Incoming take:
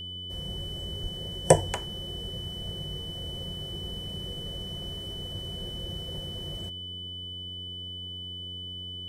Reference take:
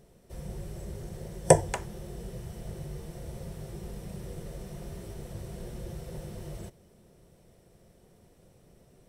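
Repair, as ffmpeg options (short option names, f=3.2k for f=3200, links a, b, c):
-filter_complex "[0:a]bandreject=f=90.7:t=h:w=4,bandreject=f=181.4:t=h:w=4,bandreject=f=272.1:t=h:w=4,bandreject=f=362.8:t=h:w=4,bandreject=f=453.5:t=h:w=4,bandreject=f=3k:w=30,asplit=3[a][b][c];[a]afade=t=out:st=1.02:d=0.02[d];[b]highpass=f=140:w=0.5412,highpass=f=140:w=1.3066,afade=t=in:st=1.02:d=0.02,afade=t=out:st=1.14:d=0.02[e];[c]afade=t=in:st=1.14:d=0.02[f];[d][e][f]amix=inputs=3:normalize=0"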